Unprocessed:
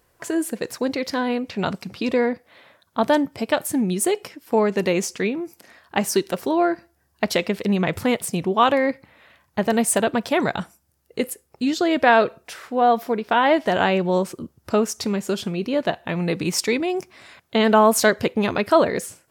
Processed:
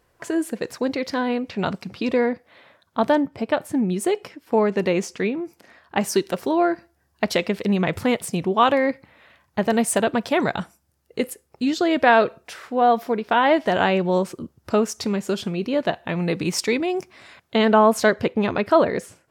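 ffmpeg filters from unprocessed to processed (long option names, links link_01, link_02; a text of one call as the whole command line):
ffmpeg -i in.wav -af "asetnsamples=nb_out_samples=441:pad=0,asendcmd='3.12 lowpass f 1900;3.94 lowpass f 3300;6.01 lowpass f 7500;17.65 lowpass f 2800',lowpass=frequency=5000:poles=1" out.wav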